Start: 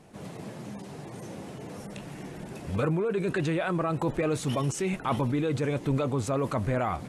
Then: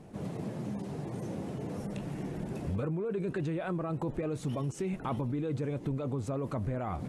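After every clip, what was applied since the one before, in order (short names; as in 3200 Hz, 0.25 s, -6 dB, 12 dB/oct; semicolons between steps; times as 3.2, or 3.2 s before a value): tilt shelf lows +5 dB, about 750 Hz; compressor 5:1, threshold -31 dBFS, peak gain reduction 12.5 dB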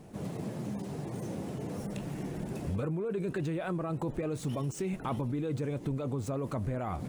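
median filter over 3 samples; high shelf 6000 Hz +9 dB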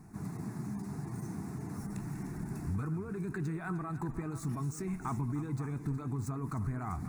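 reverse delay 0.412 s, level -12.5 dB; fixed phaser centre 1300 Hz, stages 4; thinning echo 0.304 s, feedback 44%, level -14 dB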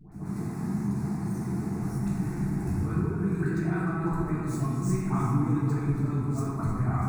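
dispersion highs, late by 0.119 s, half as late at 1000 Hz; reverb RT60 2.0 s, pre-delay 6 ms, DRR -6.5 dB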